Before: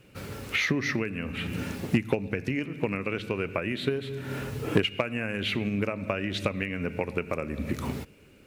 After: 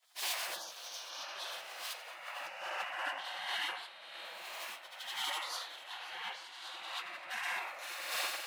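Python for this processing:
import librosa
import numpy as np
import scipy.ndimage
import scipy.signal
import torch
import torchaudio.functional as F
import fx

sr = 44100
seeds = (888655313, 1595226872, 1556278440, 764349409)

y = fx.high_shelf(x, sr, hz=5100.0, db=-6.5)
y = fx.rev_fdn(y, sr, rt60_s=2.2, lf_ratio=0.9, hf_ratio=0.95, size_ms=22.0, drr_db=-10.0)
y = fx.spec_gate(y, sr, threshold_db=-25, keep='weak')
y = fx.over_compress(y, sr, threshold_db=-45.0, ratio=-1.0)
y = scipy.signal.sosfilt(scipy.signal.butter(2, 330.0, 'highpass', fs=sr, output='sos'), y)
y = fx.peak_eq(y, sr, hz=680.0, db=3.5, octaves=0.75)
y = y + 10.0 ** (-12.5 / 20.0) * np.pad(y, (int(537 * sr / 1000.0), 0))[:len(y)]
y = fx.band_widen(y, sr, depth_pct=70)
y = y * librosa.db_to_amplitude(1.5)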